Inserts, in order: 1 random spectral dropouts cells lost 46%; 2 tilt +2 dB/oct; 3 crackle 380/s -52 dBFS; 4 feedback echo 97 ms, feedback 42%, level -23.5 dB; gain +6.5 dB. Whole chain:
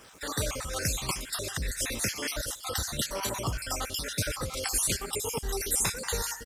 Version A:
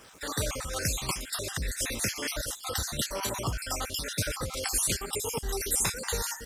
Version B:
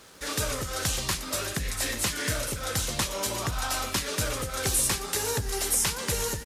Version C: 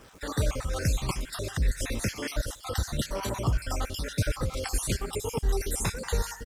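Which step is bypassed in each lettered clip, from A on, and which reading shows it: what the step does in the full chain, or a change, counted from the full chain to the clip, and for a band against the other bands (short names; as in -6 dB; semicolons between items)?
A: 4, echo-to-direct -22.5 dB to none; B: 1, loudness change +3.0 LU; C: 2, 125 Hz band +7.5 dB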